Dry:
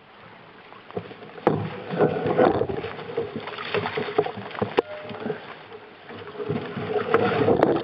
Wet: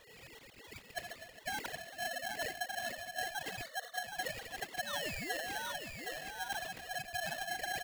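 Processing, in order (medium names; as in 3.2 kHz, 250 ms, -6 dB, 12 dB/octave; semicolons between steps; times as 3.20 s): formants replaced by sine waves; band-stop 610 Hz, Q 16; reverse; compression 8:1, threshold -35 dBFS, peak gain reduction 22 dB; reverse; painted sound fall, 4.86–5.72 s, 220–2900 Hz -39 dBFS; on a send: delay 767 ms -5.5 dB; on the sum: spectral selection erased 3.62–4.03 s, 750–2300 Hz; polarity switched at an audio rate 1.2 kHz; trim -3 dB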